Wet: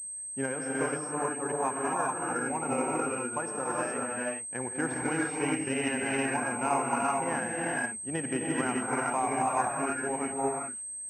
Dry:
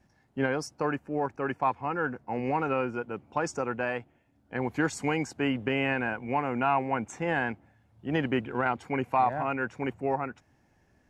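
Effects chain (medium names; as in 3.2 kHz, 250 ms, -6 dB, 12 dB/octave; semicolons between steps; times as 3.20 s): bass shelf 100 Hz -8 dB; gated-style reverb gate 450 ms rising, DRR -4.5 dB; transient shaper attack +3 dB, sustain -2 dB; class-D stage that switches slowly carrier 8.3 kHz; trim -6.5 dB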